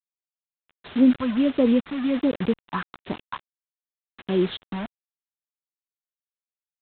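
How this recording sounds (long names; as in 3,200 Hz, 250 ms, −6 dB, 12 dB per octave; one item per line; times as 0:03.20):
phaser sweep stages 4, 1.4 Hz, lowest notch 420–2,600 Hz
a quantiser's noise floor 6 bits, dither none
G.726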